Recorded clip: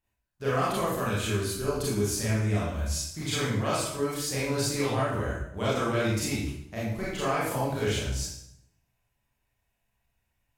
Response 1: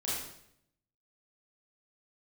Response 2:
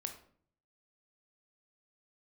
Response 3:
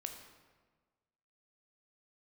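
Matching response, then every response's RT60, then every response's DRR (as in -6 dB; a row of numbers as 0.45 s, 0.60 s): 1; 0.70 s, 0.55 s, 1.4 s; -8.5 dB, 5.0 dB, 4.0 dB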